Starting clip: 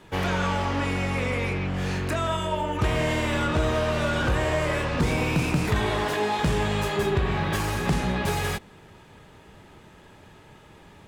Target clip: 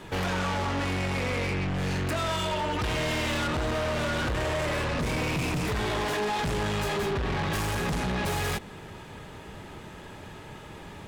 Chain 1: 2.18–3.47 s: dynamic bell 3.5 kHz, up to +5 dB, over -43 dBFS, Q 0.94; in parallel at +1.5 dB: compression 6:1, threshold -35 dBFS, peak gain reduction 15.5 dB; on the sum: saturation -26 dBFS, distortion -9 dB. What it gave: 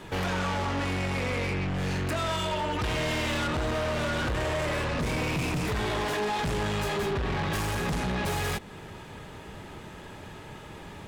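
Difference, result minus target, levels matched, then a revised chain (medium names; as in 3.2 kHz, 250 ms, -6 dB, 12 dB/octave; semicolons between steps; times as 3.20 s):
compression: peak gain reduction +5.5 dB
2.18–3.47 s: dynamic bell 3.5 kHz, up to +5 dB, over -43 dBFS, Q 0.94; in parallel at +1.5 dB: compression 6:1, threshold -28.5 dBFS, peak gain reduction 10 dB; on the sum: saturation -26 dBFS, distortion -8 dB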